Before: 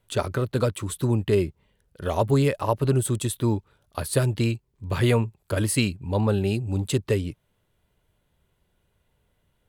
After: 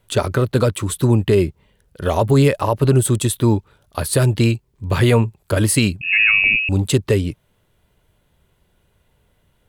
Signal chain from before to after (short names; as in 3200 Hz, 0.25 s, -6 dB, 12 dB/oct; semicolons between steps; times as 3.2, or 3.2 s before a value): 6.01–6.69 inverted band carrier 2700 Hz; maximiser +12.5 dB; gain -4.5 dB